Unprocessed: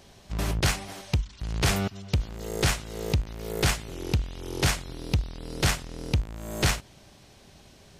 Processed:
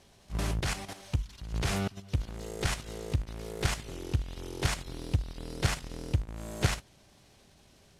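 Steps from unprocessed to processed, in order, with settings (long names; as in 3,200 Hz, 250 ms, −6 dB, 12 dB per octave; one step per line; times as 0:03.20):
variable-slope delta modulation 64 kbit/s
output level in coarse steps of 10 dB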